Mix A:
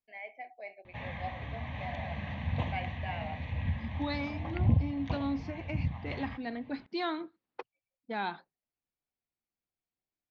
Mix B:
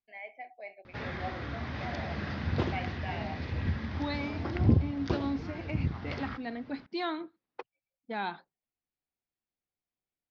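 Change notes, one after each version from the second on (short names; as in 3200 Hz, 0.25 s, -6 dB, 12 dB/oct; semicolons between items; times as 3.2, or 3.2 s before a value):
background: remove fixed phaser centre 1400 Hz, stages 6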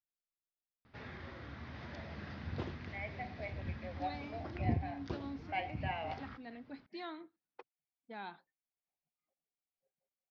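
first voice: entry +2.80 s; second voice -11.5 dB; background -10.5 dB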